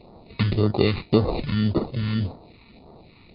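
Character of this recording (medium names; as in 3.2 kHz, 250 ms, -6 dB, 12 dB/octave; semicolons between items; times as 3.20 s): aliases and images of a low sample rate 1.6 kHz, jitter 0%; phasing stages 2, 1.8 Hz, lowest notch 590–2400 Hz; MP3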